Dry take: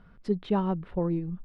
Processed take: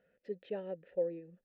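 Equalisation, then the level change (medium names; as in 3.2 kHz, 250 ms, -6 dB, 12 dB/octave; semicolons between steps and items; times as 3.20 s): vowel filter e; +2.0 dB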